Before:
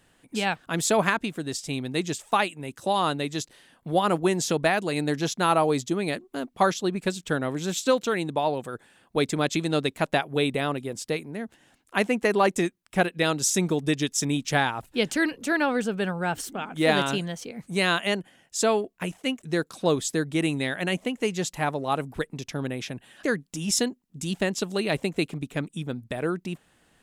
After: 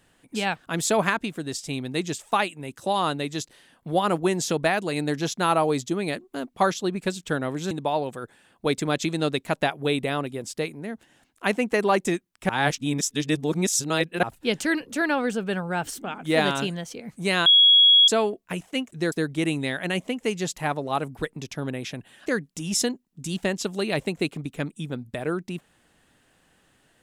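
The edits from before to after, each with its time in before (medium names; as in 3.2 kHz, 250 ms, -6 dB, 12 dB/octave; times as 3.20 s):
7.71–8.22 s: delete
13.00–14.74 s: reverse
17.97–18.59 s: bleep 3.33 kHz -11.5 dBFS
19.63–20.09 s: delete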